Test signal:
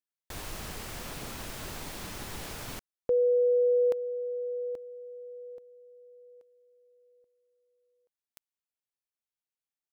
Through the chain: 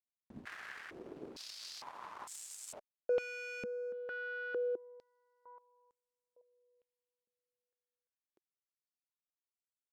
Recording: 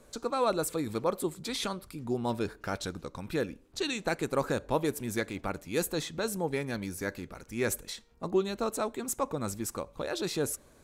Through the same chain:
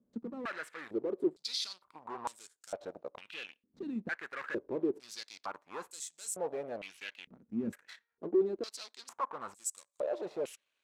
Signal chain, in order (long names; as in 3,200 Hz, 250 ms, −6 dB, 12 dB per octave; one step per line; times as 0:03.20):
hard clipping −31 dBFS
harmonic generator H 3 −12 dB, 6 −26 dB, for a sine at −31 dBFS
band-pass on a step sequencer 2.2 Hz 220–7,800 Hz
level +7 dB